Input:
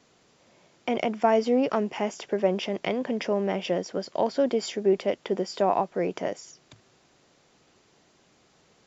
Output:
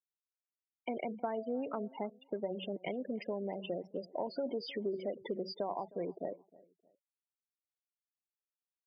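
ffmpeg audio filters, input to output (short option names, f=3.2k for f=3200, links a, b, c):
-filter_complex "[0:a]asettb=1/sr,asplit=3[a][b][c];[a]atrim=end=4.114[d];[b]atrim=start=4.11:end=5.54,asetpts=PTS-STARTPTS,afade=t=in:d=0.004:c=qsin,afade=t=out:st=1.426:d=0.004:c=qsin,aeval=exprs='val(0)+0.5*0.0251*sgn(val(0))':c=same[e];[c]atrim=start=5.536[f];[d][e]acrossfade=d=0.004:c1=hsin:c2=qsin[g];[g][f]acrossfade=d=0.004:c1=qsin:c2=hsin,bandreject=f=94.26:t=h:w=4,bandreject=f=188.52:t=h:w=4,bandreject=f=282.78:t=h:w=4,bandreject=f=377.04:t=h:w=4,bandreject=f=471.3:t=h:w=4,bandreject=f=565.56:t=h:w=4,bandreject=f=659.82:t=h:w=4,bandreject=f=754.08:t=h:w=4,bandreject=f=848.34:t=h:w=4,afftfilt=real='re*gte(hypot(re,im),0.0631)':imag='im*gte(hypot(re,im),0.0631)':win_size=1024:overlap=0.75,acompressor=threshold=-27dB:ratio=4,asplit=2[h][i];[i]adelay=311,lowpass=f=1.7k:p=1,volume=-22dB,asplit=2[j][k];[k]adelay=311,lowpass=f=1.7k:p=1,volume=0.34[l];[j][l]amix=inputs=2:normalize=0[m];[h][m]amix=inputs=2:normalize=0,aresample=11025,aresample=44100,volume=-7dB"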